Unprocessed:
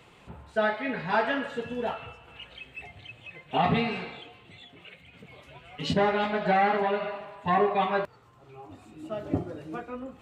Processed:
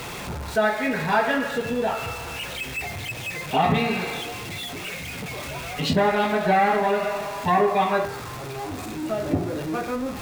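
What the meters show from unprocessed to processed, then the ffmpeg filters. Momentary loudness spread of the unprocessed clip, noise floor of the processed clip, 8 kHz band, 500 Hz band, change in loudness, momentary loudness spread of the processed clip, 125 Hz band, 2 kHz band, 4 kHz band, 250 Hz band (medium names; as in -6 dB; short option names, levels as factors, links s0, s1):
21 LU, -34 dBFS, no reading, +5.0 dB, +3.5 dB, 11 LU, +6.0 dB, +6.0 dB, +7.0 dB, +5.5 dB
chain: -filter_complex "[0:a]aeval=exprs='val(0)+0.5*0.0133*sgn(val(0))':c=same,bandreject=f=3000:w=14,bandreject=f=57.12:t=h:w=4,bandreject=f=114.24:t=h:w=4,bandreject=f=171.36:t=h:w=4,bandreject=f=228.48:t=h:w=4,bandreject=f=285.6:t=h:w=4,bandreject=f=342.72:t=h:w=4,bandreject=f=399.84:t=h:w=4,bandreject=f=456.96:t=h:w=4,bandreject=f=514.08:t=h:w=4,bandreject=f=571.2:t=h:w=4,bandreject=f=628.32:t=h:w=4,bandreject=f=685.44:t=h:w=4,bandreject=f=742.56:t=h:w=4,bandreject=f=799.68:t=h:w=4,bandreject=f=856.8:t=h:w=4,bandreject=f=913.92:t=h:w=4,bandreject=f=971.04:t=h:w=4,bandreject=f=1028.16:t=h:w=4,bandreject=f=1085.28:t=h:w=4,bandreject=f=1142.4:t=h:w=4,bandreject=f=1199.52:t=h:w=4,bandreject=f=1256.64:t=h:w=4,bandreject=f=1313.76:t=h:w=4,bandreject=f=1370.88:t=h:w=4,bandreject=f=1428:t=h:w=4,bandreject=f=1485.12:t=h:w=4,bandreject=f=1542.24:t=h:w=4,bandreject=f=1599.36:t=h:w=4,bandreject=f=1656.48:t=h:w=4,bandreject=f=1713.6:t=h:w=4,bandreject=f=1770.72:t=h:w=4,bandreject=f=1827.84:t=h:w=4,bandreject=f=1884.96:t=h:w=4,bandreject=f=1942.08:t=h:w=4,bandreject=f=1999.2:t=h:w=4,bandreject=f=2056.32:t=h:w=4,bandreject=f=2113.44:t=h:w=4,bandreject=f=2170.56:t=h:w=4,asplit=2[s0][s1];[s1]acompressor=threshold=0.0251:ratio=6,volume=1.12[s2];[s0][s2]amix=inputs=2:normalize=0,volume=1.19"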